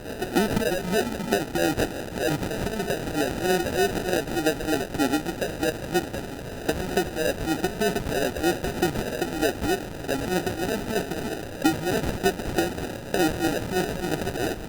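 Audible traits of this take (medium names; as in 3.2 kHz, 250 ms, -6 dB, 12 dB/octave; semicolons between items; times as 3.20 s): a quantiser's noise floor 6-bit, dither triangular; phasing stages 2, 3.2 Hz, lowest notch 320–2700 Hz; aliases and images of a low sample rate 1.1 kHz, jitter 0%; Opus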